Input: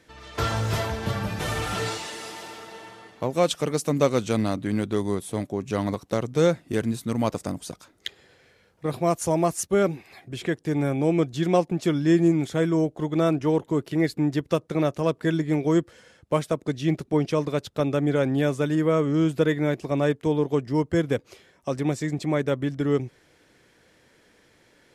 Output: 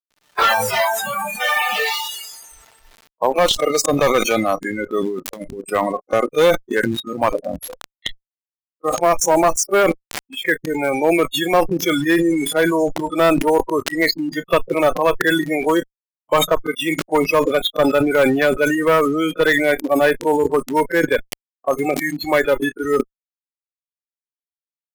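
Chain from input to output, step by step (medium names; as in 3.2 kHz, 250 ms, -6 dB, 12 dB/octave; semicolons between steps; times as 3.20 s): band-pass 760–3400 Hz; bit crusher 7-bit; 5.07–5.70 s: compressor with a negative ratio -41 dBFS, ratio -0.5; spectral noise reduction 29 dB; one-sided clip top -27 dBFS, bottom -16.5 dBFS; loudness maximiser +19.5 dB; decay stretcher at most 39 dB/s; trim -3 dB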